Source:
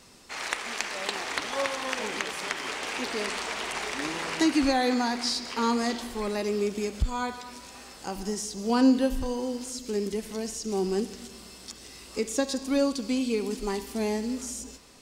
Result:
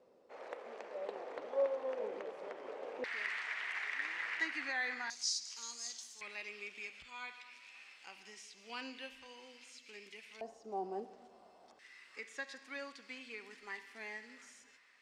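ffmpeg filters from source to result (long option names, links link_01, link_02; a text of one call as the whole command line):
ffmpeg -i in.wav -af "asetnsamples=nb_out_samples=441:pad=0,asendcmd='3.04 bandpass f 1900;5.1 bandpass f 6300;6.21 bandpass f 2400;10.41 bandpass f 710;11.79 bandpass f 1900',bandpass=frequency=520:width_type=q:width=4.1:csg=0" out.wav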